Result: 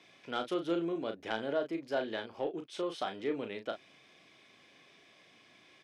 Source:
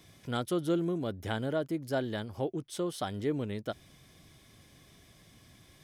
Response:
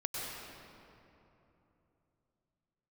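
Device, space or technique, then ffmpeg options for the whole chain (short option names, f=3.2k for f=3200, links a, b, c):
intercom: -filter_complex "[0:a]highpass=350,lowpass=4.3k,equalizer=f=2.5k:t=o:w=0.34:g=7,asoftclip=type=tanh:threshold=-21dB,asplit=2[a][b];[b]adelay=36,volume=-7dB[c];[a][c]amix=inputs=2:normalize=0"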